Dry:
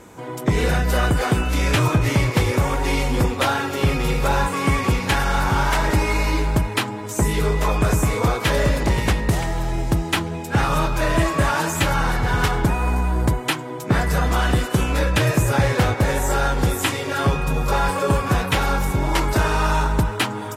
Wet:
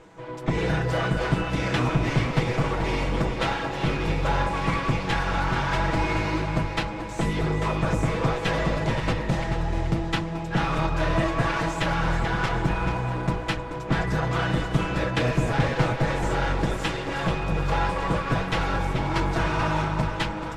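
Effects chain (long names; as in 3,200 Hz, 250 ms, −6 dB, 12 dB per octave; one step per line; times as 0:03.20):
lower of the sound and its delayed copy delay 6.1 ms
Bessel low-pass filter 4,000 Hz, order 2
delay that swaps between a low-pass and a high-pass 217 ms, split 940 Hz, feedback 71%, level −6 dB
level −4 dB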